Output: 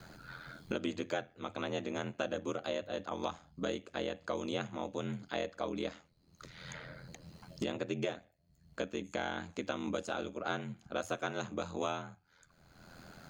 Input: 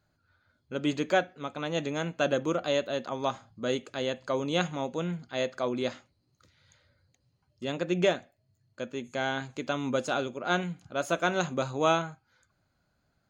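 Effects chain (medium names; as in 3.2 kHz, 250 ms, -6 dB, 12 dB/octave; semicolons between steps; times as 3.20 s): ring modulator 42 Hz; hum notches 50/100 Hz; three bands compressed up and down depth 100%; trim -5.5 dB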